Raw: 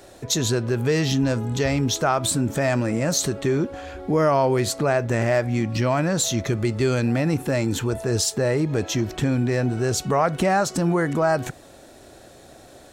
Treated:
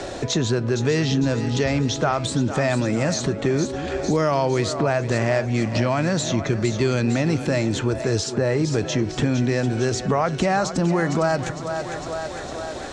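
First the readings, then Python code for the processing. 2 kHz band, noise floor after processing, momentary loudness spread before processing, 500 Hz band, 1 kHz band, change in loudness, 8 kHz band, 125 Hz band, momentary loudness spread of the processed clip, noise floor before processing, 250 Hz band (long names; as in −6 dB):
+1.0 dB, −32 dBFS, 4 LU, +0.5 dB, −0.5 dB, 0.0 dB, −4.0 dB, +1.0 dB, 5 LU, −47 dBFS, +1.0 dB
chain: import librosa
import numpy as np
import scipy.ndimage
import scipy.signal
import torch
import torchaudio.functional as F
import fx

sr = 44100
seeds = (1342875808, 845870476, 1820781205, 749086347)

y = scipy.signal.sosfilt(scipy.signal.butter(4, 7200.0, 'lowpass', fs=sr, output='sos'), x)
y = fx.echo_split(y, sr, split_hz=390.0, low_ms=221, high_ms=455, feedback_pct=52, wet_db=-13.0)
y = fx.band_squash(y, sr, depth_pct=70)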